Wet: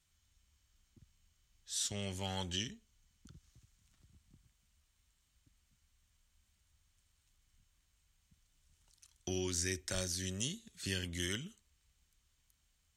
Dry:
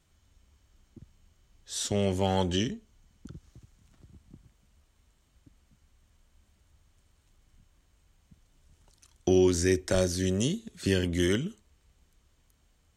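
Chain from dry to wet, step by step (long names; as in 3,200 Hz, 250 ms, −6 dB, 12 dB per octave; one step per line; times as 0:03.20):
guitar amp tone stack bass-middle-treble 5-5-5
level +3 dB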